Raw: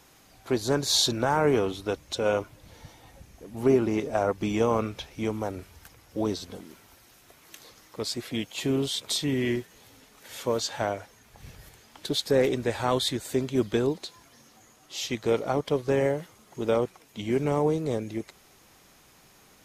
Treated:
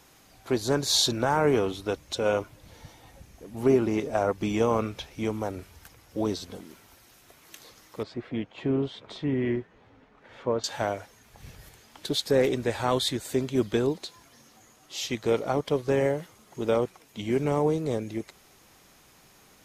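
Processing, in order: 8.03–10.64 s: low-pass 1.7 kHz 12 dB/octave

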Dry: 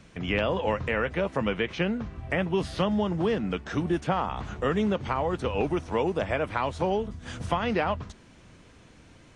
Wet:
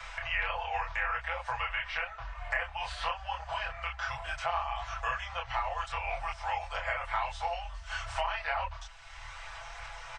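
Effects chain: inverse Chebyshev band-stop 170–430 Hz, stop band 50 dB; treble shelf 7.5 kHz -7.5 dB; comb 5.5 ms, depth 98%; chorus voices 6, 0.92 Hz, delay 25 ms, depth 3.7 ms; speed mistake 48 kHz file played as 44.1 kHz; three bands compressed up and down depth 70%

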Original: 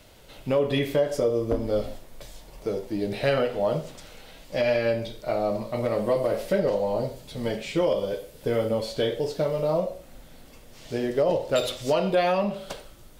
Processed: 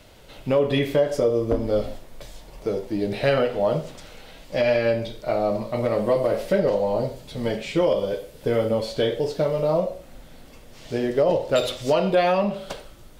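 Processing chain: treble shelf 6.6 kHz -5 dB; trim +3 dB

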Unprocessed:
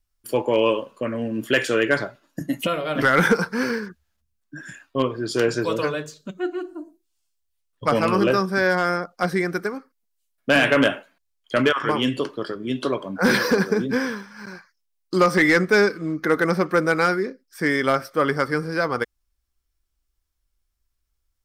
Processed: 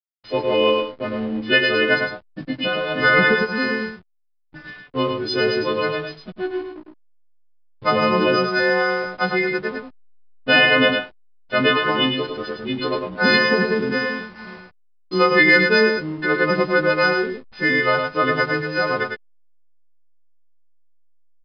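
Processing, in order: partials quantised in pitch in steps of 3 st; hysteresis with a dead band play -30 dBFS; on a send: delay 105 ms -5 dB; on the sum: resampled via 11.025 kHz

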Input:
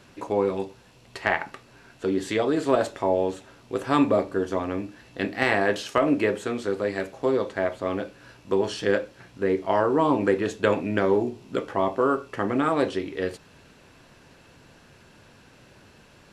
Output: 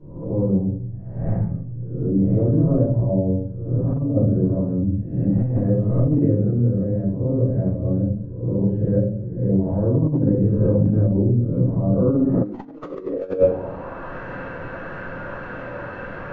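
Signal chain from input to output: reverse spectral sustain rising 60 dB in 0.70 s; low-pass sweep 130 Hz -> 1.5 kHz, 11.81–14.15 s; wow and flutter 25 cents; wavefolder -14.5 dBFS; simulated room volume 79 m³, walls mixed, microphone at 3 m; compressor with a negative ratio -17 dBFS, ratio -0.5; elliptic low-pass 6.9 kHz; peaking EQ 550 Hz +12 dB 0.21 oct

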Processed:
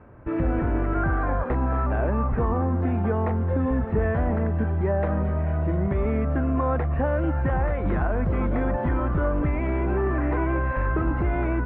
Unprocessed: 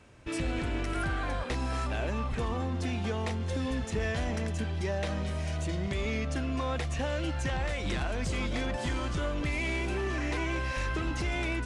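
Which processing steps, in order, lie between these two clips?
low-pass 1.5 kHz 24 dB/octave; trim +8.5 dB

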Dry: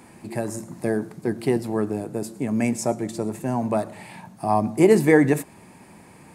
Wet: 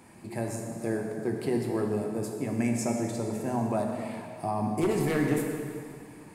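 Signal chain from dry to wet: one-sided wavefolder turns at -10 dBFS; peak limiter -14 dBFS, peak gain reduction 8.5 dB; plate-style reverb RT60 2.3 s, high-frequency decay 0.85×, DRR 1 dB; trim -6 dB

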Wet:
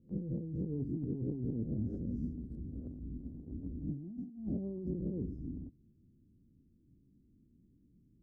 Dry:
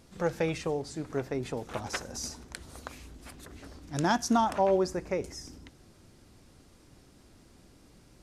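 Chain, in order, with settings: reverse spectral sustain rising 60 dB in 0.46 s; inverse Chebyshev low-pass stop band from 910 Hz, stop band 60 dB; gate -49 dBFS, range -16 dB; bass shelf 110 Hz -10 dB; compressor with a negative ratio -45 dBFS, ratio -1; trim +6.5 dB

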